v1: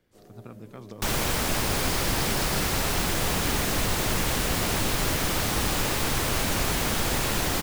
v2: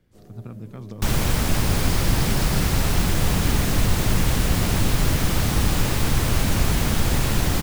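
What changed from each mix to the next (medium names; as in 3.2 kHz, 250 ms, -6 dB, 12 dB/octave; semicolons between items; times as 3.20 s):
master: add tone controls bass +10 dB, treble 0 dB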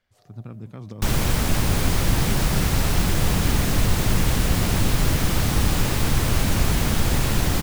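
first sound: add ladder high-pass 590 Hz, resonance 50%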